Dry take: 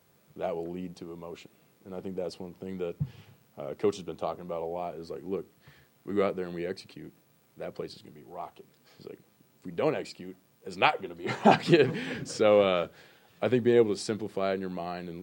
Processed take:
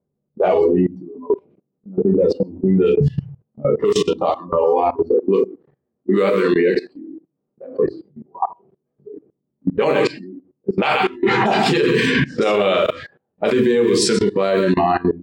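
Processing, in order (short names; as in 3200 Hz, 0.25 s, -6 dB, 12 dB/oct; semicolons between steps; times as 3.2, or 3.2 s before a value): echo 0.127 s -11 dB; reverb RT60 0.35 s, pre-delay 5 ms, DRR 2.5 dB; low-pass opened by the level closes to 310 Hz, open at -21.5 dBFS; 5.15–7.84 low shelf 120 Hz -11.5 dB; spectral noise reduction 22 dB; compressor 6:1, threshold -29 dBFS, peak gain reduction 16.5 dB; low shelf 250 Hz -10 dB; level quantiser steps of 21 dB; maximiser +35.5 dB; gain -6.5 dB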